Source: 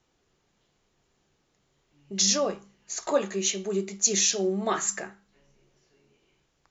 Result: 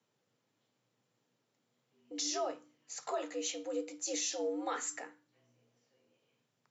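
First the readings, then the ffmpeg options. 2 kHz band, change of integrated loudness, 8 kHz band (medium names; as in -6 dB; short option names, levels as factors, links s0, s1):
-10.0 dB, -12.0 dB, no reading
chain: -af "bandreject=f=6500:w=23,alimiter=limit=0.133:level=0:latency=1:release=24,afreqshift=100,volume=0.355"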